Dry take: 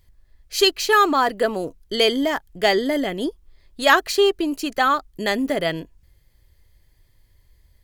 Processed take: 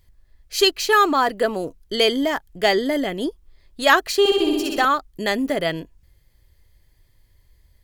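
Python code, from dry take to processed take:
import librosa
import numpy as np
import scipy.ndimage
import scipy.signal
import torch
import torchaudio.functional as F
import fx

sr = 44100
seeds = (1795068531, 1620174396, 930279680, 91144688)

y = fx.room_flutter(x, sr, wall_m=10.9, rt60_s=1.4, at=(4.19, 4.85))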